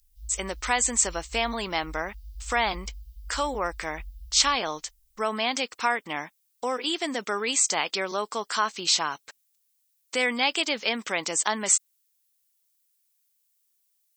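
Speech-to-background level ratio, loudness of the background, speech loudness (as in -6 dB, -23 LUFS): 19.5 dB, -46.0 LUFS, -26.5 LUFS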